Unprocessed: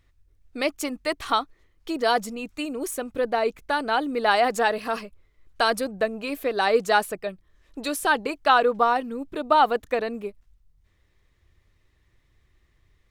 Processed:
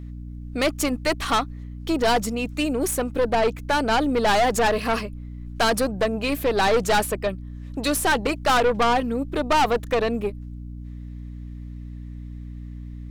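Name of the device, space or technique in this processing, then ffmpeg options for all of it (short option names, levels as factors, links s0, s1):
valve amplifier with mains hum: -af "aeval=exprs='(tanh(15.8*val(0)+0.35)-tanh(0.35))/15.8':c=same,aeval=exprs='val(0)+0.00794*(sin(2*PI*60*n/s)+sin(2*PI*2*60*n/s)/2+sin(2*PI*3*60*n/s)/3+sin(2*PI*4*60*n/s)/4+sin(2*PI*5*60*n/s)/5)':c=same,volume=2.51"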